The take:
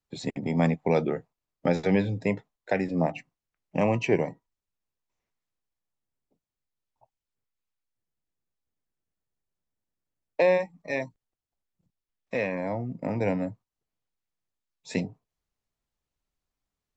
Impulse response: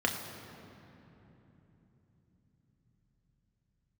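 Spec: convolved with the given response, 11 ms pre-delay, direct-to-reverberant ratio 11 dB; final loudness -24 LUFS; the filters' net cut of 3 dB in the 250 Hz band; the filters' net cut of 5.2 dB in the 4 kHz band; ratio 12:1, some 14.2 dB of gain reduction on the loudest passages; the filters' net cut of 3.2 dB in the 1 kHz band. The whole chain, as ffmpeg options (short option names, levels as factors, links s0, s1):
-filter_complex "[0:a]equalizer=f=250:t=o:g=-4,equalizer=f=1000:t=o:g=-4,equalizer=f=4000:t=o:g=-6.5,acompressor=threshold=0.02:ratio=12,asplit=2[s0][s1];[1:a]atrim=start_sample=2205,adelay=11[s2];[s1][s2]afir=irnorm=-1:irlink=0,volume=0.1[s3];[s0][s3]amix=inputs=2:normalize=0,volume=6.31"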